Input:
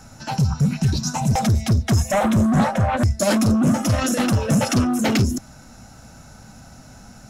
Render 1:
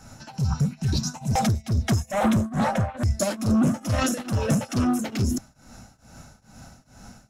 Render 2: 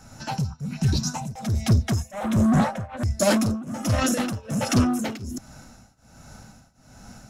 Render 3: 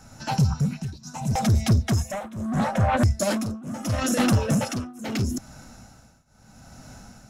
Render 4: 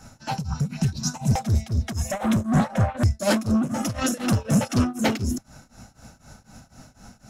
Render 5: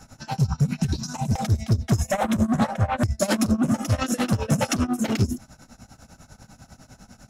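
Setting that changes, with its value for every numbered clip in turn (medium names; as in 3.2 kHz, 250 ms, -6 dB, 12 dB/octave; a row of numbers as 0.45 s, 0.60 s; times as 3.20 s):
tremolo, rate: 2.3 Hz, 1.3 Hz, 0.76 Hz, 4 Hz, 10 Hz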